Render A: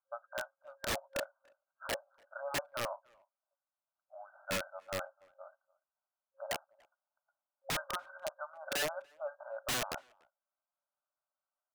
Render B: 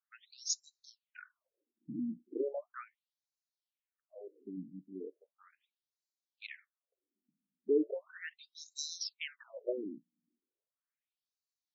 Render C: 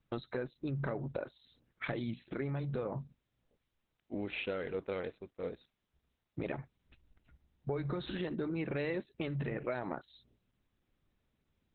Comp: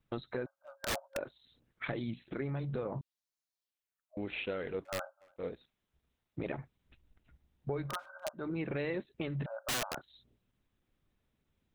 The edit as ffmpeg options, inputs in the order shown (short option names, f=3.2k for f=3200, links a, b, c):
-filter_complex "[0:a]asplit=4[a][b][c][d];[2:a]asplit=6[e][f][g][h][i][j];[e]atrim=end=0.462[k];[a]atrim=start=0.458:end=1.182[l];[f]atrim=start=1.178:end=3.012[m];[1:a]atrim=start=3.008:end=4.172[n];[g]atrim=start=4.168:end=4.852[o];[b]atrim=start=4.848:end=5.362[p];[h]atrim=start=5.358:end=7.97[q];[c]atrim=start=7.81:end=8.49[r];[i]atrim=start=8.33:end=9.462[s];[d]atrim=start=9.458:end=9.972[t];[j]atrim=start=9.968[u];[k][l]acrossfade=d=0.004:c1=hsin:c2=hsin[v];[v][m]acrossfade=d=0.004:c1=hsin:c2=hsin[w];[w][n]acrossfade=d=0.004:c1=hsin:c2=hsin[x];[x][o]acrossfade=d=0.004:c1=hsin:c2=hsin[y];[y][p]acrossfade=d=0.004:c1=hsin:c2=hsin[z];[z][q]acrossfade=d=0.004:c1=hsin:c2=hsin[aa];[aa][r]acrossfade=d=0.16:c1=tri:c2=tri[ab];[ab][s]acrossfade=d=0.16:c1=tri:c2=tri[ac];[ac][t]acrossfade=d=0.004:c1=hsin:c2=hsin[ad];[ad][u]acrossfade=d=0.004:c1=hsin:c2=hsin"